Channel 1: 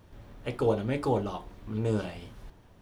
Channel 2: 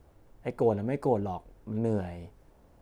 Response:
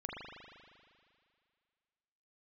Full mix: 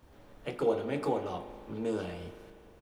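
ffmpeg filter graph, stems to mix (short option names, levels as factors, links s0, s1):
-filter_complex "[0:a]highpass=230,volume=0.531,asplit=2[s0][s1];[s1]volume=0.473[s2];[1:a]acompressor=threshold=0.01:ratio=2.5,adelay=26,volume=1[s3];[2:a]atrim=start_sample=2205[s4];[s2][s4]afir=irnorm=-1:irlink=0[s5];[s0][s3][s5]amix=inputs=3:normalize=0"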